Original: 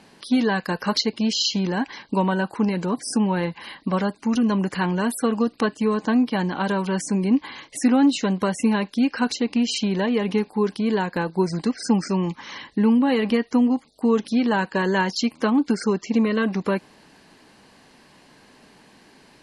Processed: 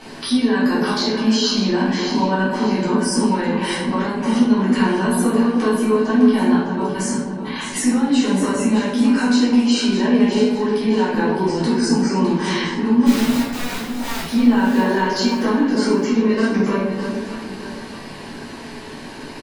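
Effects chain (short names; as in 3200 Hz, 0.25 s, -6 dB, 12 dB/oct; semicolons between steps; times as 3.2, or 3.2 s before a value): bell 170 Hz -8 dB 0.23 oct; in parallel at -2 dB: limiter -18.5 dBFS, peak gain reduction 10 dB; on the sum: compressor 3:1, threshold -32 dBFS, peak gain reduction 15 dB; 6.56–7.44 step gate ".xx....x" 175 bpm; 13.06–14.21 wrapped overs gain 33 dB; doubler 12 ms -11 dB; on a send: echo with dull and thin repeats by turns 0.304 s, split 1000 Hz, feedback 63%, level -5 dB; on the sum: shoebox room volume 240 m³, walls mixed, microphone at 3.5 m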